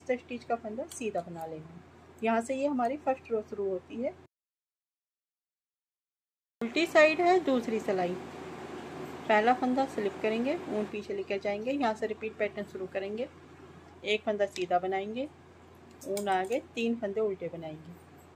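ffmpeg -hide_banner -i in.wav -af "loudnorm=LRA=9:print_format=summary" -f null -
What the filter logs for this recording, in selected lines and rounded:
Input Integrated:    -31.3 LUFS
Input True Peak:      -9.0 dBTP
Input LRA:             5.9 LU
Input Threshold:     -42.2 LUFS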